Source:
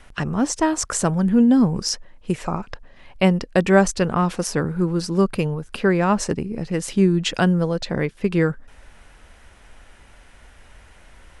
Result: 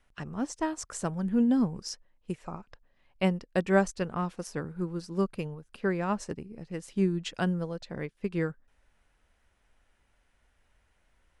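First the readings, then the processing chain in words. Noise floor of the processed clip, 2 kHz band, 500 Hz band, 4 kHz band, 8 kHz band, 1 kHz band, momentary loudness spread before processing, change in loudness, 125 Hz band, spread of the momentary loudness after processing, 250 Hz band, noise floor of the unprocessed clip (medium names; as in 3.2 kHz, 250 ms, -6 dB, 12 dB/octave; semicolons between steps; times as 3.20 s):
-71 dBFS, -10.5 dB, -10.5 dB, -14.0 dB, -15.0 dB, -11.0 dB, 9 LU, -10.5 dB, -11.5 dB, 14 LU, -10.5 dB, -49 dBFS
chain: upward expansion 1.5:1, over -37 dBFS; trim -8 dB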